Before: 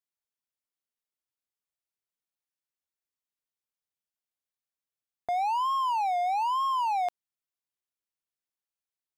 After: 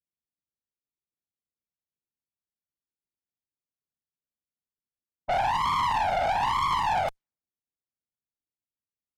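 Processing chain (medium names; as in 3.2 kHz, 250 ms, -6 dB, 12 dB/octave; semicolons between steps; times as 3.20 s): level-controlled noise filter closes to 300 Hz, open at -27 dBFS; whisper effect; valve stage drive 29 dB, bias 0.6; trim +7.5 dB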